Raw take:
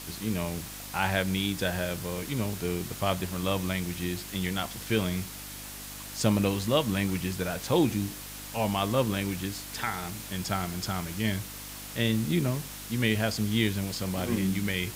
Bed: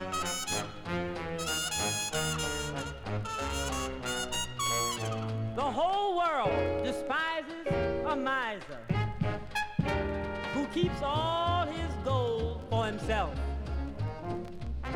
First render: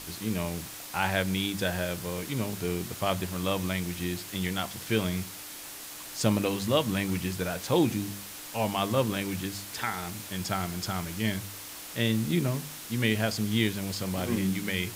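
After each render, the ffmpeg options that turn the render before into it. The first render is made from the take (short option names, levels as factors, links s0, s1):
-af "bandreject=f=50:t=h:w=4,bandreject=f=100:t=h:w=4,bandreject=f=150:t=h:w=4,bandreject=f=200:t=h:w=4,bandreject=f=250:t=h:w=4"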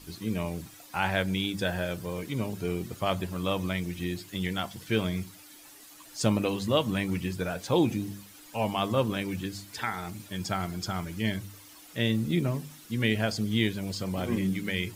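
-af "afftdn=nr=12:nf=-42"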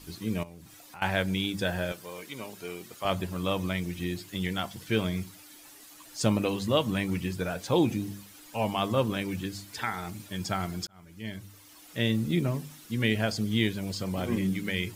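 -filter_complex "[0:a]asettb=1/sr,asplit=3[s0][s1][s2];[s0]atrim=end=0.434[s3];[s1]atrim=start=0.43:end=1.02,asetpts=PTS-STARTPTS,afade=t=in:d=0.004:c=qsin,afade=t=out:st=0.586:d=0.004:c=qsin,acompressor=threshold=0.00447:ratio=3:attack=3.2:release=140:knee=1:detection=peak[s4];[s2]atrim=start=1.016[s5];[s3][s4]acrossfade=d=0.004:c1=hsin:c2=qsin[s6];[s6][s5]acrossfade=d=0.004:c1=qsin:c2=hsin,asettb=1/sr,asplit=3[s7][s8][s9];[s7]atrim=end=1.924[s10];[s8]atrim=start=1.92:end=3.05,asetpts=PTS-STARTPTS,afade=t=in:d=0.004:c=qsin,afade=t=out:st=1.126:d=0.004:c=qsin,highpass=f=800:p=1[s11];[s9]atrim=start=3.046[s12];[s10][s11]acrossfade=d=0.004:c1=hsin:c2=qsin[s13];[s13][s12]acrossfade=d=0.004:c1=qsin:c2=hsin,asplit=2[s14][s15];[s14]atrim=end=10.87,asetpts=PTS-STARTPTS,afade=t=out:st=10.866:d=0.004:c=hsin[s16];[s15]atrim=start=10.87,asetpts=PTS-STARTPTS,afade=t=in:d=1.1[s17];[s16][s17]concat=n=2:v=0:a=1"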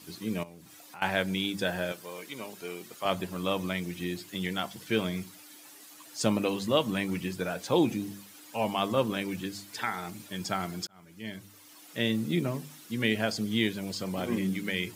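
-af "highpass=160"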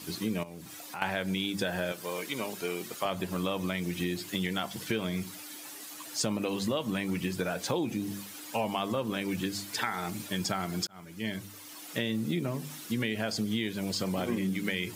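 -filter_complex "[0:a]asplit=2[s0][s1];[s1]alimiter=limit=0.106:level=0:latency=1,volume=1.12[s2];[s0][s2]amix=inputs=2:normalize=0,acompressor=threshold=0.0398:ratio=5"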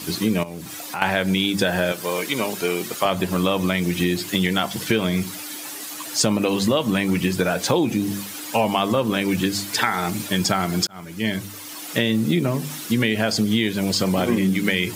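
-af "volume=3.55,alimiter=limit=0.891:level=0:latency=1"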